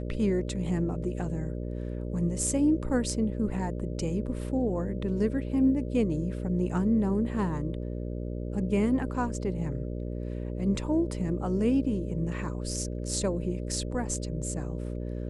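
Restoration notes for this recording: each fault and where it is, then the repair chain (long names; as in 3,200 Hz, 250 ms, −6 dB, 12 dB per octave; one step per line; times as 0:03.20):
mains buzz 60 Hz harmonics 10 −34 dBFS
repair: hum removal 60 Hz, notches 10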